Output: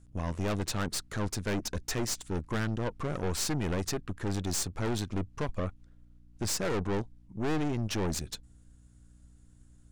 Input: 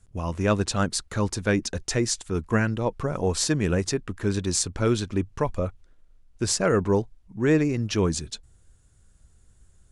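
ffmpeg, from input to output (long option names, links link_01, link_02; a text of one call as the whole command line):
ffmpeg -i in.wav -af "aeval=exprs='(tanh(25.1*val(0)+0.75)-tanh(0.75))/25.1':channel_layout=same,aeval=exprs='val(0)+0.00141*(sin(2*PI*60*n/s)+sin(2*PI*2*60*n/s)/2+sin(2*PI*3*60*n/s)/3+sin(2*PI*4*60*n/s)/4+sin(2*PI*5*60*n/s)/5)':channel_layout=same" out.wav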